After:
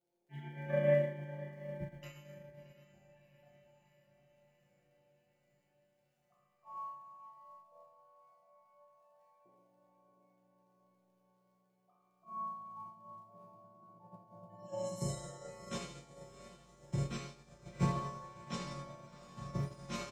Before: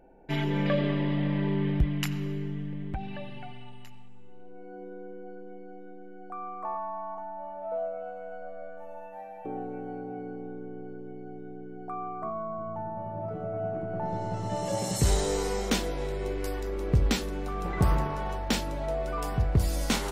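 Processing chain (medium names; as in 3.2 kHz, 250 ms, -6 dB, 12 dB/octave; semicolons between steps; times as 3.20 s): high-pass 58 Hz 24 dB/octave; band-stop 4.5 kHz, Q 16; spectral gate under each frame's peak -25 dB strong; comb 5.6 ms, depth 76%; crackle 35 per s -38 dBFS; chord resonator A#2 minor, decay 0.75 s; on a send: echo that smears into a reverb 696 ms, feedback 69%, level -6.5 dB; on the sum: Schroeder reverb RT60 0.95 s, combs from 28 ms, DRR -0.5 dB; upward expansion 2.5:1, over -52 dBFS; trim +11.5 dB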